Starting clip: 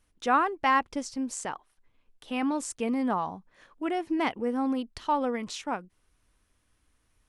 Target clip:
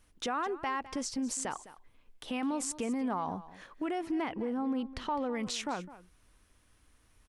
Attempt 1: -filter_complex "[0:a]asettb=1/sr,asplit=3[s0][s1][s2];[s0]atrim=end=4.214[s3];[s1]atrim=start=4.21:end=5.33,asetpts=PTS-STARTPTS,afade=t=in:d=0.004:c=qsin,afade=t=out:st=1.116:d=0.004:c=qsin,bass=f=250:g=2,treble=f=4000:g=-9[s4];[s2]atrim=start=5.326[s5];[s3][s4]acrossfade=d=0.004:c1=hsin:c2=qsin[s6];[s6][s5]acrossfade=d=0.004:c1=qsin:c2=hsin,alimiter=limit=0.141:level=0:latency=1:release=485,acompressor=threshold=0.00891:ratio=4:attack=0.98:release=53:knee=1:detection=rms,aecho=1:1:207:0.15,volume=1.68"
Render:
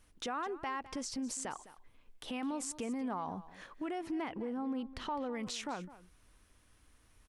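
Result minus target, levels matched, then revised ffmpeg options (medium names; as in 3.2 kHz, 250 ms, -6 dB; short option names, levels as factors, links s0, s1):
compression: peak gain reduction +4.5 dB
-filter_complex "[0:a]asettb=1/sr,asplit=3[s0][s1][s2];[s0]atrim=end=4.214[s3];[s1]atrim=start=4.21:end=5.33,asetpts=PTS-STARTPTS,afade=t=in:d=0.004:c=qsin,afade=t=out:st=1.116:d=0.004:c=qsin,bass=f=250:g=2,treble=f=4000:g=-9[s4];[s2]atrim=start=5.326[s5];[s3][s4]acrossfade=d=0.004:c1=hsin:c2=qsin[s6];[s6][s5]acrossfade=d=0.004:c1=qsin:c2=hsin,alimiter=limit=0.141:level=0:latency=1:release=485,acompressor=threshold=0.0178:ratio=4:attack=0.98:release=53:knee=1:detection=rms,aecho=1:1:207:0.15,volume=1.68"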